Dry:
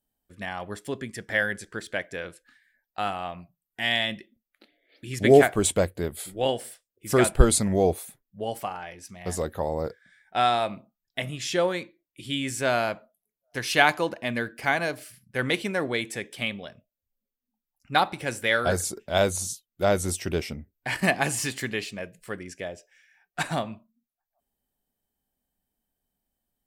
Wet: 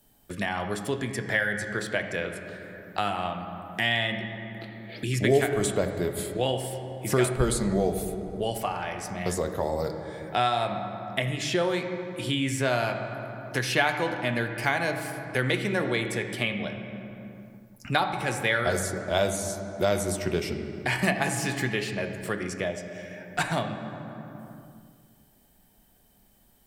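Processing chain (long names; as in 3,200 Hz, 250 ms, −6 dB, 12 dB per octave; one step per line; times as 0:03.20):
on a send at −5 dB: convolution reverb RT60 1.6 s, pre-delay 4 ms
on the sum: multiband upward and downward compressor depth 70%
level −1.5 dB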